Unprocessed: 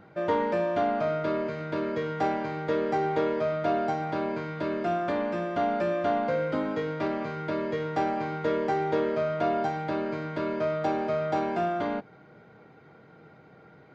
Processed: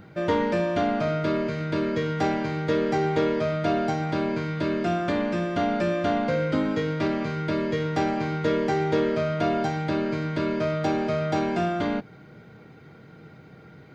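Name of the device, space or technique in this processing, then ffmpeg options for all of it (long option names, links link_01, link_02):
smiley-face EQ: -af "lowshelf=frequency=150:gain=4.5,equalizer=frequency=790:width_type=o:width=2.1:gain=-7.5,highshelf=frequency=5800:gain=6,volume=7dB"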